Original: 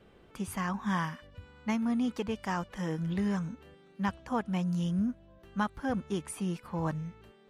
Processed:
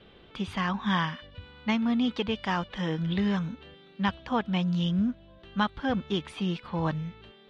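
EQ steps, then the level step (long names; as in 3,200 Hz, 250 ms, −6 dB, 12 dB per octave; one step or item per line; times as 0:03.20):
low-pass with resonance 3,600 Hz, resonance Q 3.4
+3.5 dB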